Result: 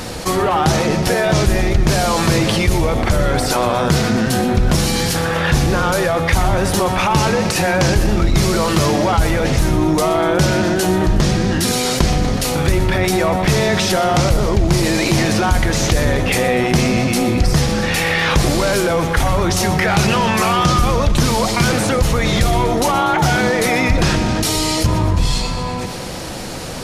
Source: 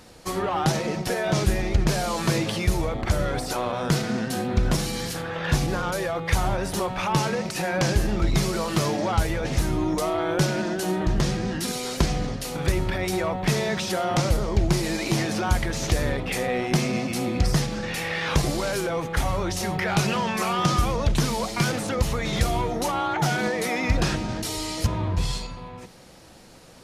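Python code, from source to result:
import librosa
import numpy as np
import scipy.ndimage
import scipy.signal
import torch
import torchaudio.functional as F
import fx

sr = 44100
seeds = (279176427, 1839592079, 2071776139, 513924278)

y = fx.octave_divider(x, sr, octaves=1, level_db=-6.0)
y = fx.echo_thinned(y, sr, ms=122, feedback_pct=61, hz=420.0, wet_db=-13)
y = fx.env_flatten(y, sr, amount_pct=50)
y = y * 10.0 ** (4.0 / 20.0)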